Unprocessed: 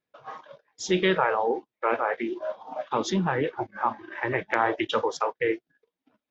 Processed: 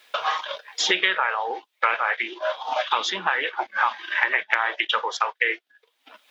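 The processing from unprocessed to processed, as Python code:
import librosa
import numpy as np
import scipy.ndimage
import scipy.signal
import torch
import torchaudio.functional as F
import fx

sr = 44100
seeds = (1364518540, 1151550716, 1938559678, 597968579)

y = fx.dynamic_eq(x, sr, hz=1700.0, q=0.98, threshold_db=-40.0, ratio=4.0, max_db=6)
y = scipy.signal.sosfilt(scipy.signal.butter(2, 830.0, 'highpass', fs=sr, output='sos'), y)
y = fx.peak_eq(y, sr, hz=3300.0, db=8.5, octaves=0.98)
y = fx.band_squash(y, sr, depth_pct=100)
y = F.gain(torch.from_numpy(y), 1.0).numpy()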